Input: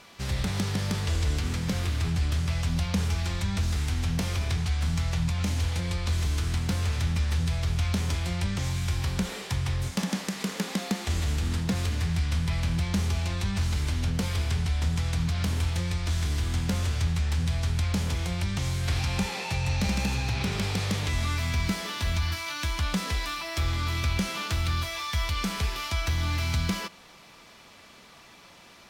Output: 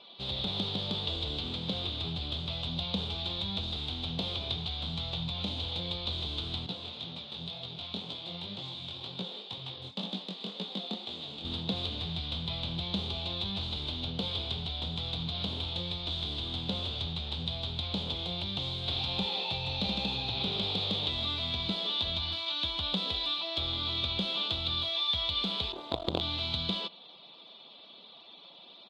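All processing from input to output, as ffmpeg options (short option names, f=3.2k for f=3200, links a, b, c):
-filter_complex "[0:a]asettb=1/sr,asplit=3[a][b][c];[a]atrim=end=6.664[d];[b]atrim=start=6.66:end=11.45,asetpts=PTS-STARTPTS,afade=t=in:d=0.004:c=qsin,afade=t=out:st=4.786:d=0.004:c=qsin,highpass=f=110:w=0.5412,highpass=f=110:w=1.3066,aeval=exprs='sgn(val(0))*max(abs(val(0))-0.00668,0)':c=same,flanger=delay=16:depth=7.8:speed=2[e];[c]atrim=start=11.446[f];[d][e]acrossfade=d=0.004:c1=hsin:c2=qsin[g];[g][f]acrossfade=d=0.004:c1=qsin:c2=hsin,asettb=1/sr,asplit=3[h][i][j];[h]atrim=end=25.724[k];[i]atrim=start=25.72:end=26.21,asetpts=PTS-STARTPTS,afade=t=in:d=0.004:c=qsin,afade=t=out:st=0.486:d=0.004:c=qsin,lowpass=f=1.1k:w=0.5412,lowpass=f=1.1k:w=1.3066,equalizer=f=340:w=0.45:g=11,acrusher=bits=4:dc=4:mix=0:aa=0.000001[l];[j]atrim=start=26.206[m];[k][l]acrossfade=d=0.004:c1=hsin:c2=qsin[n];[n][m]acrossfade=d=0.004:c1=qsin:c2=hsin,highpass=f=370:p=1,afftfilt=real='re*gte(hypot(re,im),0.00224)':imag='im*gte(hypot(re,im),0.00224)':win_size=1024:overlap=0.75,firequalizer=gain_entry='entry(690,0);entry(1800,-18);entry(3600,12);entry(5600,-20);entry(14000,-29)':delay=0.05:min_phase=1"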